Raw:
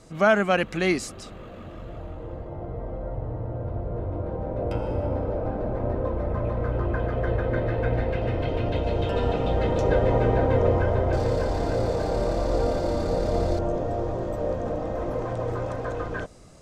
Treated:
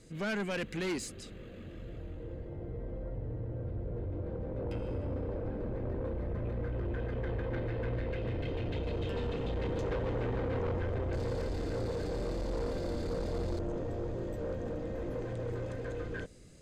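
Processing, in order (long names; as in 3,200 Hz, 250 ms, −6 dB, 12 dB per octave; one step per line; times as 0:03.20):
flat-topped bell 900 Hz −11.5 dB 1.3 octaves
notch filter 5,600 Hz, Q 11
soft clipping −25 dBFS, distortion −10 dB
level −5 dB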